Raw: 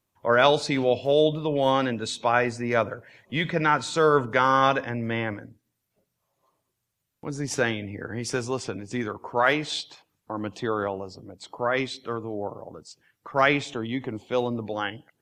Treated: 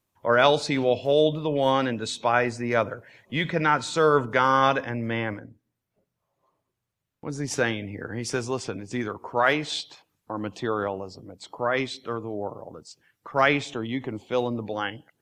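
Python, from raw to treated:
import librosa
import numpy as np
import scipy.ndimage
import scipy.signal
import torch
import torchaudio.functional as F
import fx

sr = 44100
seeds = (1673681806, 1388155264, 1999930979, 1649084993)

y = fx.high_shelf(x, sr, hz=fx.line((5.38, 2500.0), (7.28, 4300.0)), db=-10.5, at=(5.38, 7.28), fade=0.02)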